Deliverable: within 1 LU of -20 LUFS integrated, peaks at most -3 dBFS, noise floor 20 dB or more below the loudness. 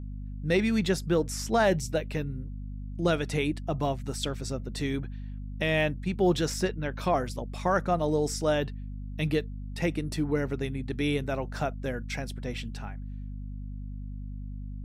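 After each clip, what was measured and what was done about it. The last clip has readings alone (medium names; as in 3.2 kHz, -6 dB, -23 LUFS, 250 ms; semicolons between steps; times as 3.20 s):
hum 50 Hz; highest harmonic 250 Hz; hum level -35 dBFS; loudness -29.5 LUFS; peak level -14.0 dBFS; loudness target -20.0 LUFS
-> hum notches 50/100/150/200/250 Hz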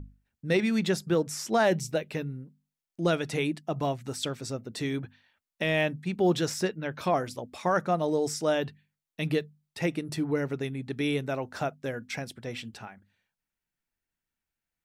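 hum not found; loudness -30.0 LUFS; peak level -14.5 dBFS; loudness target -20.0 LUFS
-> trim +10 dB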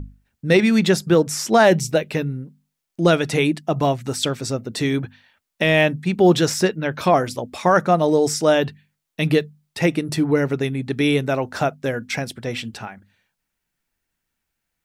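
loudness -20.0 LUFS; peak level -4.5 dBFS; noise floor -79 dBFS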